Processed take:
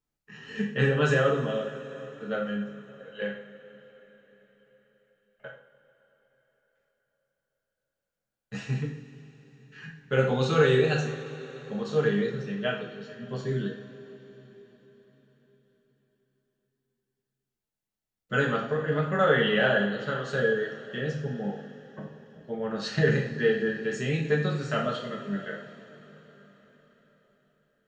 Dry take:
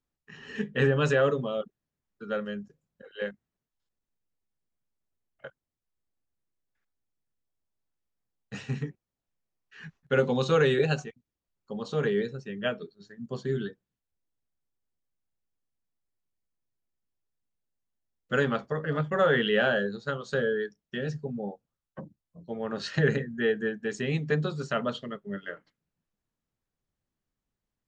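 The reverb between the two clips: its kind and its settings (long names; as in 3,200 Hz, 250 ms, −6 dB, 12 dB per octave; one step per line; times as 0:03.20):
coupled-rooms reverb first 0.55 s, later 4.9 s, from −18 dB, DRR −1.5 dB
level −2 dB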